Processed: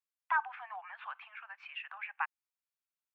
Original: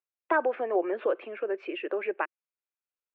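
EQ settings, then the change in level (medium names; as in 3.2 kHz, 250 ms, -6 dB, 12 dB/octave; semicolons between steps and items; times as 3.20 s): steep high-pass 810 Hz 72 dB/octave; -3.0 dB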